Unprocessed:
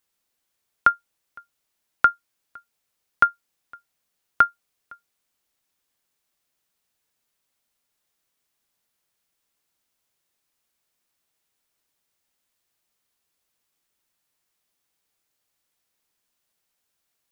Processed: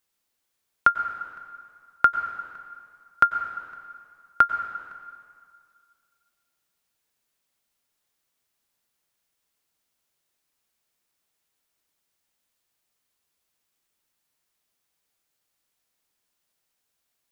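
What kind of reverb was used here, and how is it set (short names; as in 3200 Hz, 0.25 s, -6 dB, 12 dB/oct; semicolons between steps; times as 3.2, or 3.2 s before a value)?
plate-style reverb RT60 2.1 s, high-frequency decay 0.85×, pre-delay 85 ms, DRR 9 dB; gain -1 dB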